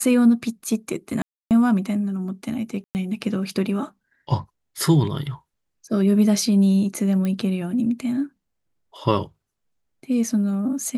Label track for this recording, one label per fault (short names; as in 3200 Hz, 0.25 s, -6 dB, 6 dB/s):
1.220000	1.510000	gap 0.288 s
2.840000	2.950000	gap 0.109 s
7.250000	7.250000	pop -15 dBFS